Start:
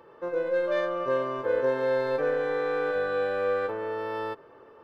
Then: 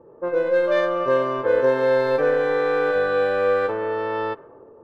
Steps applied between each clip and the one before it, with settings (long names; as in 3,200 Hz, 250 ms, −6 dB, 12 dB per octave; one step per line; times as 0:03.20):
low-pass that shuts in the quiet parts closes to 480 Hz, open at −24 dBFS
level +7 dB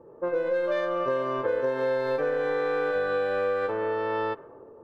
downward compressor, threshold −22 dBFS, peak gain reduction 8 dB
level −1.5 dB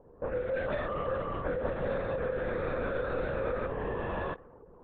linear-prediction vocoder at 8 kHz whisper
level −6 dB